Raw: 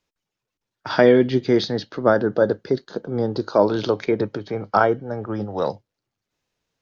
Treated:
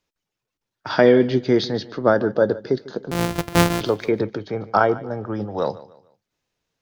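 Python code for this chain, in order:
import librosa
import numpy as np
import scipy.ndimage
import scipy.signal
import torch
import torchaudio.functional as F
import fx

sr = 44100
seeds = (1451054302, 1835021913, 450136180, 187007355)

y = fx.sample_sort(x, sr, block=256, at=(3.11, 3.81))
y = fx.echo_feedback(y, sr, ms=148, feedback_pct=35, wet_db=-18.5)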